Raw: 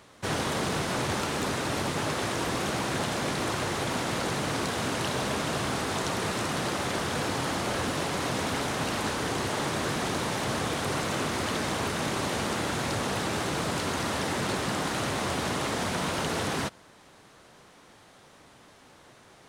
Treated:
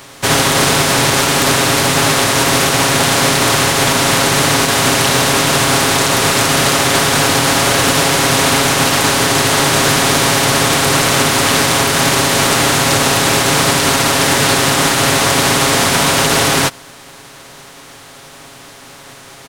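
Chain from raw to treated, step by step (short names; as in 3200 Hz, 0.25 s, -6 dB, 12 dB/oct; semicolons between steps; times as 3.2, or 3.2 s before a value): spectral contrast lowered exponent 0.62; comb 7.3 ms; maximiser +17 dB; gain -1 dB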